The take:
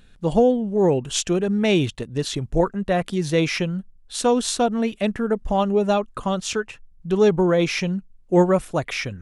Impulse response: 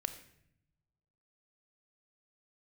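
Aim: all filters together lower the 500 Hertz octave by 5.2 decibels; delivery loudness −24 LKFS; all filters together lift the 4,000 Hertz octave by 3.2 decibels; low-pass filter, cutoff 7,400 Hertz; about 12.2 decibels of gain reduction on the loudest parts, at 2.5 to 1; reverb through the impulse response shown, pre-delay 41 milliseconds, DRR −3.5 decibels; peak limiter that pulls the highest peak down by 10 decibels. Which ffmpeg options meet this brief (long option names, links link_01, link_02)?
-filter_complex "[0:a]lowpass=7400,equalizer=frequency=500:width_type=o:gain=-6.5,equalizer=frequency=4000:width_type=o:gain=4.5,acompressor=threshold=-34dB:ratio=2.5,alimiter=level_in=1dB:limit=-24dB:level=0:latency=1,volume=-1dB,asplit=2[link_01][link_02];[1:a]atrim=start_sample=2205,adelay=41[link_03];[link_02][link_03]afir=irnorm=-1:irlink=0,volume=3.5dB[link_04];[link_01][link_04]amix=inputs=2:normalize=0,volume=6dB"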